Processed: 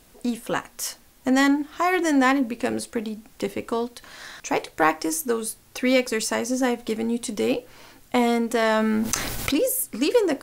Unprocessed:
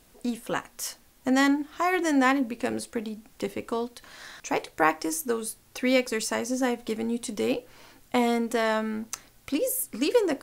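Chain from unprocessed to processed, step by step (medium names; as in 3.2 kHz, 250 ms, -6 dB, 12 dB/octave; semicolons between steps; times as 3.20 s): in parallel at -4.5 dB: saturation -19 dBFS, distortion -14 dB; 8.62–9.66 s: on the sum: level flattener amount 70%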